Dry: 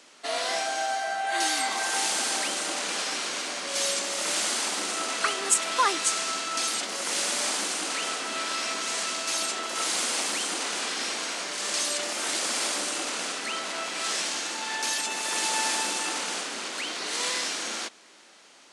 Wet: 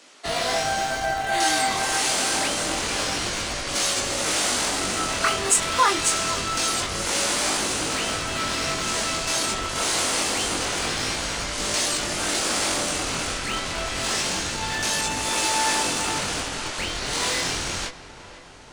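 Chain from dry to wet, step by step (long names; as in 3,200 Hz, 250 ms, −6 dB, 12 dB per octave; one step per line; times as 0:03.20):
in parallel at −8 dB: comparator with hysteresis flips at −25 dBFS
on the sum: chorus effect 0.26 Hz, delay 19 ms, depth 4.4 ms
feedback echo with a low-pass in the loop 504 ms, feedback 69%, low-pass 2,500 Hz, level −15.5 dB
level +6 dB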